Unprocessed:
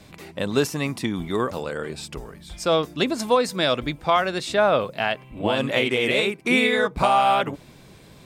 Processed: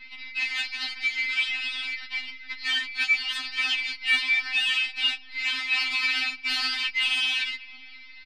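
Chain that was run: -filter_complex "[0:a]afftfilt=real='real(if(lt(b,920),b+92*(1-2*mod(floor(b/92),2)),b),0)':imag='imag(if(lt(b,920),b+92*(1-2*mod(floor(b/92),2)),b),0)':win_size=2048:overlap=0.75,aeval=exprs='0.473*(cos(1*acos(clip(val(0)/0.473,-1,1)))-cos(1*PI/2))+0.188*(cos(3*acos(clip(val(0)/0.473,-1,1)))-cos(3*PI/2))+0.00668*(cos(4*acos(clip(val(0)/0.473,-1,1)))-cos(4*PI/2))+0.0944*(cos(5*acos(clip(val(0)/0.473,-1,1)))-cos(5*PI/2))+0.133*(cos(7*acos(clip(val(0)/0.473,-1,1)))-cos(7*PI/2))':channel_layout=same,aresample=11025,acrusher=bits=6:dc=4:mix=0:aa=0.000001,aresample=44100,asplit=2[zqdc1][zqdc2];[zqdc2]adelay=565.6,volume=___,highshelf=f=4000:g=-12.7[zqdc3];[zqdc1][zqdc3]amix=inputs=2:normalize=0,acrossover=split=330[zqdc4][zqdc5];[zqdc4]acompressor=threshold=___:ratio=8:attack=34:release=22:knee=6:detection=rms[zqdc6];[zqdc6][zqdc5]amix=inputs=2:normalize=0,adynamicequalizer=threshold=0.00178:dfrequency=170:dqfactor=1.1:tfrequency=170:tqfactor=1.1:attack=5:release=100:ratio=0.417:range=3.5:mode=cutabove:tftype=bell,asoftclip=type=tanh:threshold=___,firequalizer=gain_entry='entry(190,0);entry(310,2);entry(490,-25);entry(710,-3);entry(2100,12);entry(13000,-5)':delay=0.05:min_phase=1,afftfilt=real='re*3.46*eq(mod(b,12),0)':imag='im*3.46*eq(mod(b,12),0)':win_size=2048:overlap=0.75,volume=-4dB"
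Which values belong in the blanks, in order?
-26dB, -49dB, -22.5dB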